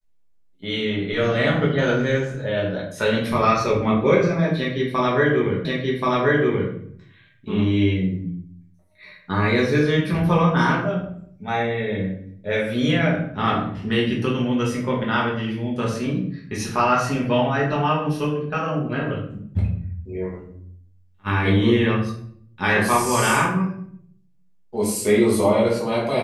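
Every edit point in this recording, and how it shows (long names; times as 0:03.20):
0:05.65: the same again, the last 1.08 s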